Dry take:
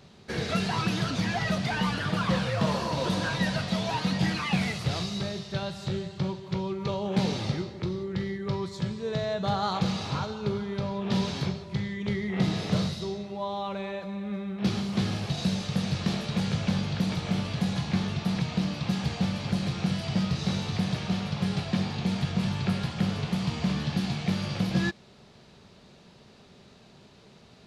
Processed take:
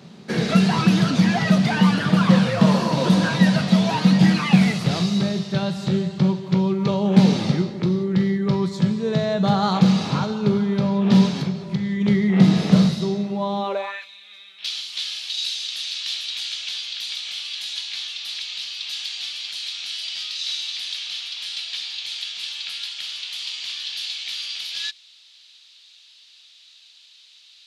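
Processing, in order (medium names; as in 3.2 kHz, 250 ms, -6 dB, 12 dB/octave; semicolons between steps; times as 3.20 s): 11.26–12.01 s: compression 3:1, threshold -32 dBFS, peak gain reduction 6.5 dB; high-pass sweep 180 Hz -> 3.4 kHz, 13.58–14.09 s; trim +6 dB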